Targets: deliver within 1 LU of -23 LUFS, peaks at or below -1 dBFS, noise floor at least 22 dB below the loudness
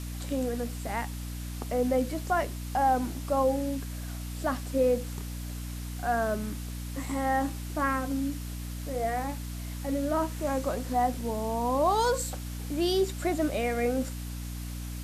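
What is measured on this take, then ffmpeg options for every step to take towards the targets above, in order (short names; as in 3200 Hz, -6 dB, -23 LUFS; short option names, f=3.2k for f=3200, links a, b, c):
hum 60 Hz; harmonics up to 300 Hz; hum level -34 dBFS; noise floor -37 dBFS; noise floor target -53 dBFS; loudness -30.5 LUFS; peak -14.0 dBFS; loudness target -23.0 LUFS
-> -af "bandreject=f=60:t=h:w=6,bandreject=f=120:t=h:w=6,bandreject=f=180:t=h:w=6,bandreject=f=240:t=h:w=6,bandreject=f=300:t=h:w=6"
-af "afftdn=nr=16:nf=-37"
-af "volume=7.5dB"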